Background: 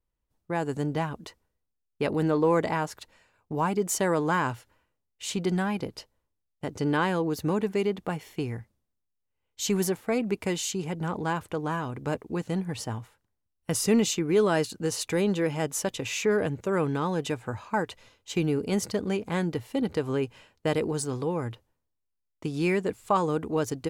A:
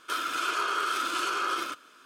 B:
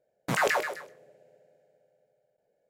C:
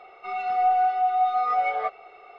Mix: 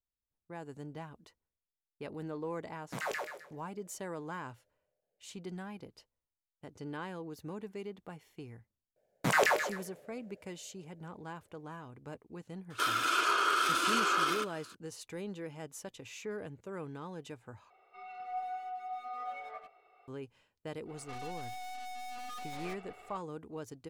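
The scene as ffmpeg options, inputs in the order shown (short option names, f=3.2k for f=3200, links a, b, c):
-filter_complex "[2:a]asplit=2[a][b];[3:a]asplit=2[c][d];[0:a]volume=-16dB[e];[c]asplit=2[f][g];[g]adelay=90,highpass=300,lowpass=3.4k,asoftclip=type=hard:threshold=-23.5dB,volume=-7dB[h];[f][h]amix=inputs=2:normalize=0[i];[d]aeval=exprs='(tanh(126*val(0)+0.8)-tanh(0.8))/126':c=same[j];[e]asplit=2[k][l];[k]atrim=end=17.704[m];[i]atrim=end=2.38,asetpts=PTS-STARTPTS,volume=-17.5dB[n];[l]atrim=start=20.076[o];[a]atrim=end=2.69,asetpts=PTS-STARTPTS,volume=-11.5dB,afade=t=in:d=0.004:c=hsin,afade=t=out:st=2.686:d=0.004:c=hsin,adelay=2640[p];[b]atrim=end=2.69,asetpts=PTS-STARTPTS,volume=-1dB,afade=t=in:d=0.004:c=hsin,afade=t=out:st=2.686:d=0.004:c=hsin,adelay=8960[q];[1:a]atrim=end=2.05,asetpts=PTS-STARTPTS,afade=t=in:d=0.004:c=hsin,afade=t=out:st=2.046:d=0.004:c=hsin,adelay=12700[r];[j]atrim=end=2.38,asetpts=PTS-STARTPTS,volume=-1.5dB,afade=t=in:d=0.1,afade=t=out:st=2.28:d=0.1,adelay=20850[s];[m][n]acrossfade=d=0.004:c1=hsin:c2=hsin[t];[t][o]acrossfade=d=0.004:c1=hsin:c2=hsin[u];[u][p][q][r][s]amix=inputs=5:normalize=0"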